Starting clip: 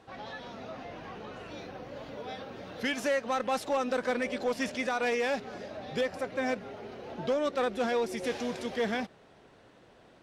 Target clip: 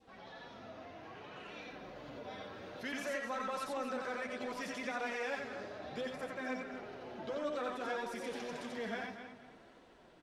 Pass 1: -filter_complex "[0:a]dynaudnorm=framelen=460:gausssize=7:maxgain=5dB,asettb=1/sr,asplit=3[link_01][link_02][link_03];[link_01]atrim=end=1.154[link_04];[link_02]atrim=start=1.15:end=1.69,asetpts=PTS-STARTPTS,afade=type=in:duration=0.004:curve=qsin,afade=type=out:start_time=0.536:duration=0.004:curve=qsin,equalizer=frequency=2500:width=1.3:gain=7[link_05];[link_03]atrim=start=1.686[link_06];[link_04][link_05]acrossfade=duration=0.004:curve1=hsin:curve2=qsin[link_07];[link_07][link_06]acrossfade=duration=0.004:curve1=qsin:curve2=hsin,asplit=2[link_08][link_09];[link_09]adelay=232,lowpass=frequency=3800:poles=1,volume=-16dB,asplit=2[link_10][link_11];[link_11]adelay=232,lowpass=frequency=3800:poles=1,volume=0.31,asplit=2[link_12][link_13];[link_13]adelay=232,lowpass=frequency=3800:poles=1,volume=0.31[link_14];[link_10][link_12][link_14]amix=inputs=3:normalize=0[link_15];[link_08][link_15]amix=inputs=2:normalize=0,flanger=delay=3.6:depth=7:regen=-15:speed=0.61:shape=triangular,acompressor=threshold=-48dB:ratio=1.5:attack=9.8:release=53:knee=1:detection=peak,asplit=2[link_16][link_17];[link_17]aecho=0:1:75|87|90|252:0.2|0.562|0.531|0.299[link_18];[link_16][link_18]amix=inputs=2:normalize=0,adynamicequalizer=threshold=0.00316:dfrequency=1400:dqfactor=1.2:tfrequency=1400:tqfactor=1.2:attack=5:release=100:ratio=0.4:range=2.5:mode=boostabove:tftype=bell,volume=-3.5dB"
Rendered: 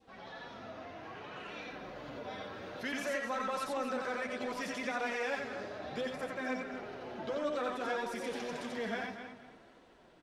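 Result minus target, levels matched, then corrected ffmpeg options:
downward compressor: peak gain reduction −3 dB
-filter_complex "[0:a]dynaudnorm=framelen=460:gausssize=7:maxgain=5dB,asettb=1/sr,asplit=3[link_01][link_02][link_03];[link_01]atrim=end=1.154[link_04];[link_02]atrim=start=1.15:end=1.69,asetpts=PTS-STARTPTS,afade=type=in:duration=0.004:curve=qsin,afade=type=out:start_time=0.536:duration=0.004:curve=qsin,equalizer=frequency=2500:width=1.3:gain=7[link_05];[link_03]atrim=start=1.686[link_06];[link_04][link_05]acrossfade=duration=0.004:curve1=hsin:curve2=qsin[link_07];[link_07][link_06]acrossfade=duration=0.004:curve1=qsin:curve2=hsin,asplit=2[link_08][link_09];[link_09]adelay=232,lowpass=frequency=3800:poles=1,volume=-16dB,asplit=2[link_10][link_11];[link_11]adelay=232,lowpass=frequency=3800:poles=1,volume=0.31,asplit=2[link_12][link_13];[link_13]adelay=232,lowpass=frequency=3800:poles=1,volume=0.31[link_14];[link_10][link_12][link_14]amix=inputs=3:normalize=0[link_15];[link_08][link_15]amix=inputs=2:normalize=0,flanger=delay=3.6:depth=7:regen=-15:speed=0.61:shape=triangular,acompressor=threshold=-57dB:ratio=1.5:attack=9.8:release=53:knee=1:detection=peak,asplit=2[link_16][link_17];[link_17]aecho=0:1:75|87|90|252:0.2|0.562|0.531|0.299[link_18];[link_16][link_18]amix=inputs=2:normalize=0,adynamicequalizer=threshold=0.00316:dfrequency=1400:dqfactor=1.2:tfrequency=1400:tqfactor=1.2:attack=5:release=100:ratio=0.4:range=2.5:mode=boostabove:tftype=bell,volume=-3.5dB"

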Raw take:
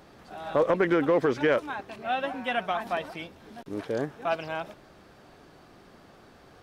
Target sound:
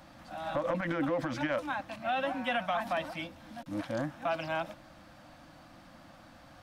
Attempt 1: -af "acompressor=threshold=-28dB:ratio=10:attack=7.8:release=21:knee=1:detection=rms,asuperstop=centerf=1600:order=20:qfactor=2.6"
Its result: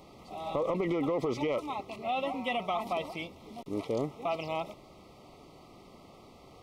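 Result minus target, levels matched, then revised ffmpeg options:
2,000 Hz band −6.0 dB
-af "acompressor=threshold=-28dB:ratio=10:attack=7.8:release=21:knee=1:detection=rms,asuperstop=centerf=410:order=20:qfactor=2.6"

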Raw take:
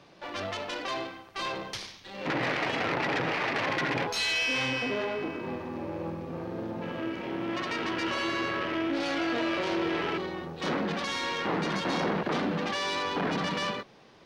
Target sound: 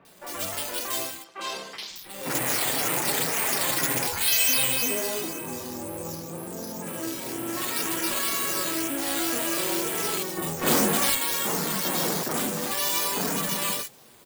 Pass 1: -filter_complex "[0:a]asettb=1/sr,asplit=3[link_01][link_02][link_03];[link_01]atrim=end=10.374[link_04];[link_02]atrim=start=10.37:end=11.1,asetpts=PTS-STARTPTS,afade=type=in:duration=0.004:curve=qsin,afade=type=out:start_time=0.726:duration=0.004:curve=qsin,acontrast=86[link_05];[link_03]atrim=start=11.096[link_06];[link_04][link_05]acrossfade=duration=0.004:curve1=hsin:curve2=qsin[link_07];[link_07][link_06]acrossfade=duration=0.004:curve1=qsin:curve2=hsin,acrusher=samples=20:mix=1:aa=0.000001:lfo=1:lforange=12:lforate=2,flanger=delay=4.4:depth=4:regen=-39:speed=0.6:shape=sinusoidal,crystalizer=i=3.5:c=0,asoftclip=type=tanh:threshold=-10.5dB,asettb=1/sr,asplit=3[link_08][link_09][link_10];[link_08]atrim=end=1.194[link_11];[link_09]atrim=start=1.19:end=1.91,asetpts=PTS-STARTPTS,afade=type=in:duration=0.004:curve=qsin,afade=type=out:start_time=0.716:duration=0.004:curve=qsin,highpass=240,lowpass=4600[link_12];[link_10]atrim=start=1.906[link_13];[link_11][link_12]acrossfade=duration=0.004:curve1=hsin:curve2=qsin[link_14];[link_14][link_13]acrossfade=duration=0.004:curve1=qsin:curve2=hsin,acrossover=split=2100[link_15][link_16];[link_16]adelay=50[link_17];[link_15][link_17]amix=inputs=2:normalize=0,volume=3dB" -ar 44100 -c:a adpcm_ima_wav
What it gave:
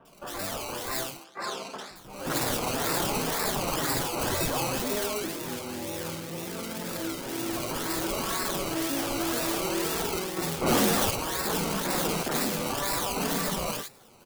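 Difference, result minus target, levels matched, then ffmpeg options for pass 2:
sample-and-hold swept by an LFO: distortion +9 dB
-filter_complex "[0:a]asettb=1/sr,asplit=3[link_01][link_02][link_03];[link_01]atrim=end=10.374[link_04];[link_02]atrim=start=10.37:end=11.1,asetpts=PTS-STARTPTS,afade=type=in:duration=0.004:curve=qsin,afade=type=out:start_time=0.726:duration=0.004:curve=qsin,acontrast=86[link_05];[link_03]atrim=start=11.096[link_06];[link_04][link_05]acrossfade=duration=0.004:curve1=hsin:curve2=qsin[link_07];[link_07][link_06]acrossfade=duration=0.004:curve1=qsin:curve2=hsin,acrusher=samples=6:mix=1:aa=0.000001:lfo=1:lforange=3.6:lforate=2,flanger=delay=4.4:depth=4:regen=-39:speed=0.6:shape=sinusoidal,crystalizer=i=3.5:c=0,asoftclip=type=tanh:threshold=-10.5dB,asettb=1/sr,asplit=3[link_08][link_09][link_10];[link_08]atrim=end=1.194[link_11];[link_09]atrim=start=1.19:end=1.91,asetpts=PTS-STARTPTS,afade=type=in:duration=0.004:curve=qsin,afade=type=out:start_time=0.716:duration=0.004:curve=qsin,highpass=240,lowpass=4600[link_12];[link_10]atrim=start=1.906[link_13];[link_11][link_12]acrossfade=duration=0.004:curve1=hsin:curve2=qsin[link_14];[link_14][link_13]acrossfade=duration=0.004:curve1=qsin:curve2=hsin,acrossover=split=2100[link_15][link_16];[link_16]adelay=50[link_17];[link_15][link_17]amix=inputs=2:normalize=0,volume=3dB" -ar 44100 -c:a adpcm_ima_wav

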